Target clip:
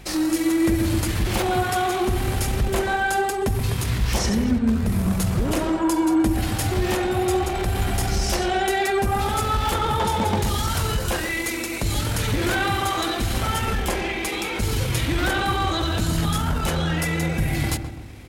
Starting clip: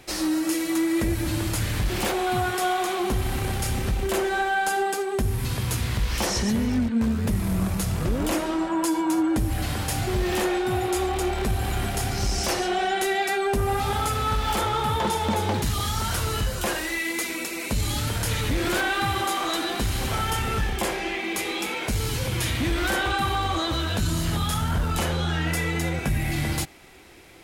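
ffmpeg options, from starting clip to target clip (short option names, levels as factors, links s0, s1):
-filter_complex "[0:a]atempo=1.5,aeval=exprs='val(0)+0.00631*(sin(2*PI*50*n/s)+sin(2*PI*2*50*n/s)/2+sin(2*PI*3*50*n/s)/3+sin(2*PI*4*50*n/s)/4+sin(2*PI*5*50*n/s)/5)':c=same,asplit=2[s0][s1];[s1]adelay=128,lowpass=f=940:p=1,volume=0.501,asplit=2[s2][s3];[s3]adelay=128,lowpass=f=940:p=1,volume=0.53,asplit=2[s4][s5];[s5]adelay=128,lowpass=f=940:p=1,volume=0.53,asplit=2[s6][s7];[s7]adelay=128,lowpass=f=940:p=1,volume=0.53,asplit=2[s8][s9];[s9]adelay=128,lowpass=f=940:p=1,volume=0.53,asplit=2[s10][s11];[s11]adelay=128,lowpass=f=940:p=1,volume=0.53,asplit=2[s12][s13];[s13]adelay=128,lowpass=f=940:p=1,volume=0.53[s14];[s0][s2][s4][s6][s8][s10][s12][s14]amix=inputs=8:normalize=0,volume=1.26"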